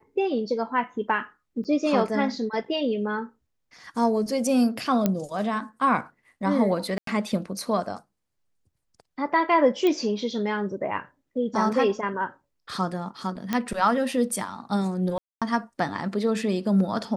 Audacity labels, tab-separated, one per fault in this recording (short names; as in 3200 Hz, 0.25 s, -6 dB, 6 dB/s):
1.640000	1.650000	gap 7.9 ms
5.060000	5.060000	pop -9 dBFS
6.980000	7.070000	gap 93 ms
9.870000	9.870000	pop -13 dBFS
13.530000	13.530000	pop -11 dBFS
15.180000	15.420000	gap 0.236 s